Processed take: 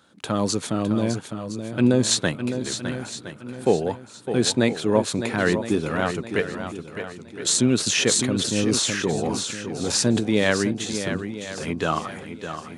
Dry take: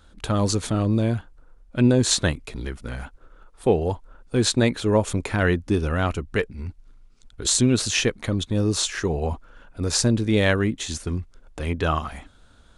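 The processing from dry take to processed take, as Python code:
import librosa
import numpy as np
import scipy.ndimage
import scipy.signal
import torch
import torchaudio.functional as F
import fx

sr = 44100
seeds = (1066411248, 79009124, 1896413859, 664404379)

y = scipy.signal.sosfilt(scipy.signal.butter(4, 130.0, 'highpass', fs=sr, output='sos'), x)
y = fx.echo_swing(y, sr, ms=1015, ratio=1.5, feedback_pct=31, wet_db=-9.0)
y = fx.sustainer(y, sr, db_per_s=32.0, at=(7.86, 10.19), fade=0.02)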